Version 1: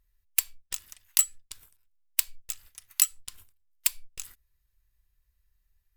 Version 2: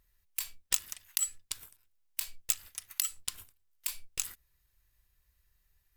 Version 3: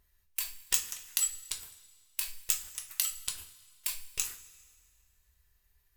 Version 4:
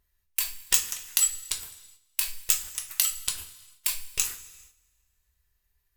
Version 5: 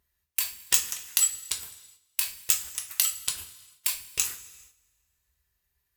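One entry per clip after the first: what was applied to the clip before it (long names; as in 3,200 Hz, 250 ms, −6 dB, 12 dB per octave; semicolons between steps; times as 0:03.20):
low-shelf EQ 67 Hz −9.5 dB; compressor whose output falls as the input rises −29 dBFS, ratio −1
coupled-rooms reverb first 0.28 s, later 1.9 s, from −18 dB, DRR 2 dB
noise gate −59 dBFS, range −10 dB; in parallel at −7 dB: hard clipping −19.5 dBFS, distortion −12 dB; on the sum: level +3.5 dB
high-pass filter 61 Hz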